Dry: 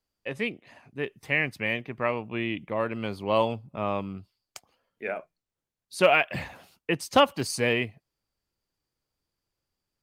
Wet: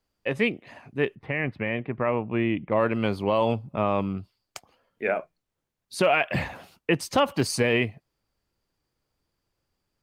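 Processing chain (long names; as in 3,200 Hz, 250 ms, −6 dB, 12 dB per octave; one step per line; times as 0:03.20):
high-shelf EQ 3,200 Hz −6 dB
brickwall limiter −18.5 dBFS, peak gain reduction 10 dB
0:01.15–0:02.72: high-frequency loss of the air 420 metres
level +7 dB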